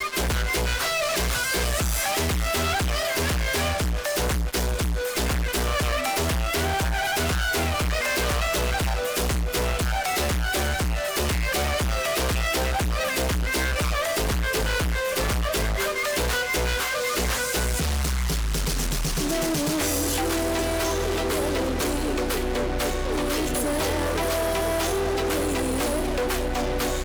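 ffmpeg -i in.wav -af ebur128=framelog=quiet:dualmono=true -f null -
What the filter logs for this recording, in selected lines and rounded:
Integrated loudness:
  I:         -21.5 LUFS
  Threshold: -31.5 LUFS
Loudness range:
  LRA:         1.1 LU
  Threshold: -41.5 LUFS
  LRA low:   -22.0 LUFS
  LRA high:  -20.9 LUFS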